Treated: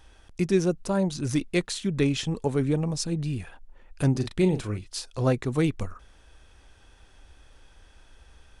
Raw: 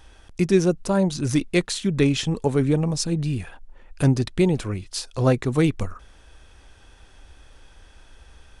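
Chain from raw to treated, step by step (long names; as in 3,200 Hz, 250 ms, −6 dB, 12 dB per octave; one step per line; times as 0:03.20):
0:04.11–0:04.79: double-tracking delay 38 ms −8.5 dB
level −4.5 dB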